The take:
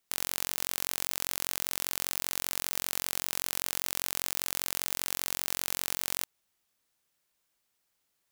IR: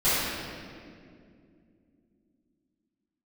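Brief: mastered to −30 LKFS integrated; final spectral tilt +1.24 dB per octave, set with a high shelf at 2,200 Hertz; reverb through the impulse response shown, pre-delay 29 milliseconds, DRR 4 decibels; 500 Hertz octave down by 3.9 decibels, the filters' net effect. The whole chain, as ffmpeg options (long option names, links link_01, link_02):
-filter_complex "[0:a]equalizer=frequency=500:width_type=o:gain=-5.5,highshelf=frequency=2200:gain=5.5,asplit=2[link_01][link_02];[1:a]atrim=start_sample=2205,adelay=29[link_03];[link_02][link_03]afir=irnorm=-1:irlink=0,volume=-20dB[link_04];[link_01][link_04]amix=inputs=2:normalize=0,volume=-4.5dB"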